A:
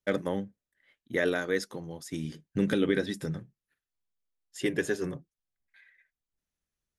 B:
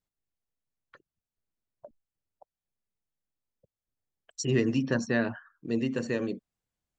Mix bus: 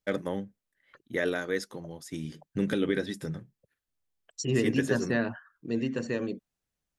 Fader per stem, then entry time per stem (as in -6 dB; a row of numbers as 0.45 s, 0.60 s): -1.5 dB, -1.0 dB; 0.00 s, 0.00 s